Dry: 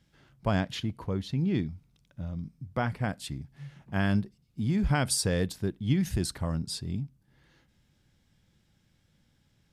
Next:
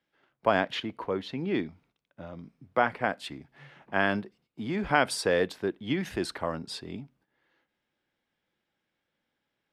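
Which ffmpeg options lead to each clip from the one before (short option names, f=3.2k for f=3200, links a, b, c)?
-filter_complex "[0:a]agate=range=-12dB:threshold=-57dB:ratio=16:detection=peak,acrossover=split=300 3400:gain=0.0708 1 0.158[a][b][c];[a][b][c]amix=inputs=3:normalize=0,volume=7.5dB"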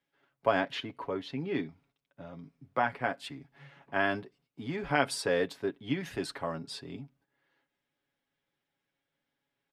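-af "aecho=1:1:7.2:0.59,volume=-4.5dB"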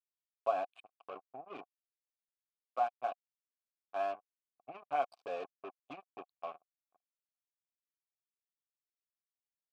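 -filter_complex "[0:a]afftfilt=real='re*gte(hypot(re,im),0.0282)':imag='im*gte(hypot(re,im),0.0282)':win_size=1024:overlap=0.75,acrusher=bits=4:mix=0:aa=0.5,asplit=3[a][b][c];[a]bandpass=f=730:t=q:w=8,volume=0dB[d];[b]bandpass=f=1.09k:t=q:w=8,volume=-6dB[e];[c]bandpass=f=2.44k:t=q:w=8,volume=-9dB[f];[d][e][f]amix=inputs=3:normalize=0,volume=1dB"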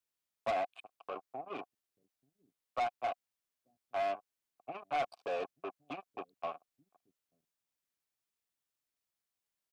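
-filter_complex "[0:a]acrossover=split=260|2300[a][b][c];[a]aecho=1:1:884:0.133[d];[b]asoftclip=type=tanh:threshold=-35dB[e];[d][e][c]amix=inputs=3:normalize=0,volume=5.5dB"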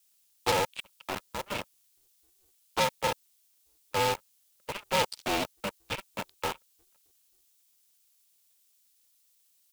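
-filter_complex "[0:a]acrossover=split=220|1100[a][b][c];[b]acrusher=bits=6:mix=0:aa=0.000001[d];[c]aexciter=amount=5.1:drive=3.5:freq=2.7k[e];[a][d][e]amix=inputs=3:normalize=0,aeval=exprs='val(0)*sgn(sin(2*PI*190*n/s))':c=same,volume=6dB"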